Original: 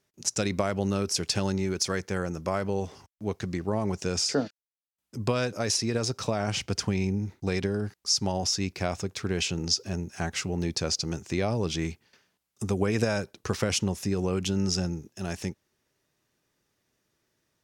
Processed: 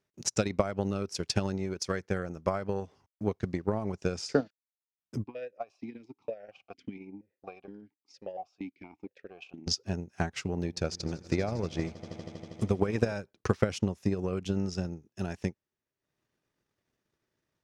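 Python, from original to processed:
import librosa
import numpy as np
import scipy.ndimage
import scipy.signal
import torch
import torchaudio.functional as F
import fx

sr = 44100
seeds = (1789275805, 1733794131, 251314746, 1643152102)

y = fx.vowel_held(x, sr, hz=4.3, at=(5.23, 9.66), fade=0.02)
y = fx.echo_swell(y, sr, ms=80, loudest=5, wet_db=-18.0, at=(10.48, 13.13))
y = fx.high_shelf(y, sr, hz=5200.0, db=-10.5)
y = fx.transient(y, sr, attack_db=9, sustain_db=-9)
y = y * 10.0 ** (-5.5 / 20.0)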